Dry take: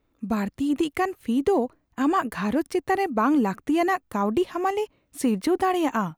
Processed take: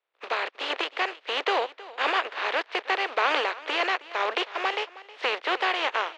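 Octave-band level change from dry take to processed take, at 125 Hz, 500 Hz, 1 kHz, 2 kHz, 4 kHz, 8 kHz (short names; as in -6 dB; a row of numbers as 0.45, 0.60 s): under -40 dB, -5.0 dB, -1.5 dB, +6.5 dB, +11.0 dB, -8.0 dB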